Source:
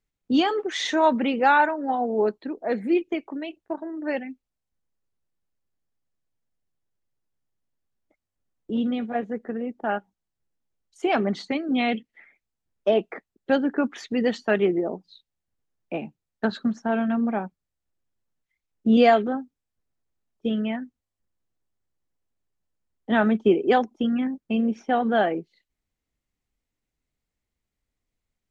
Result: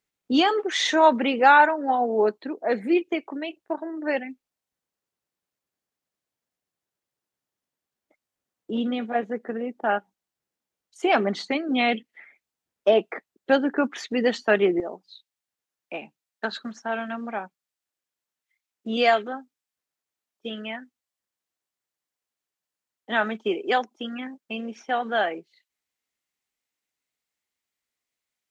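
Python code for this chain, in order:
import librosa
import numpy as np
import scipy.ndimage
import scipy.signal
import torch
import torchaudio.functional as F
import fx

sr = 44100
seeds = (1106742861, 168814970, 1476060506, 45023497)

y = fx.highpass(x, sr, hz=fx.steps((0.0, 390.0), (14.8, 1300.0)), slope=6)
y = y * 10.0 ** (4.0 / 20.0)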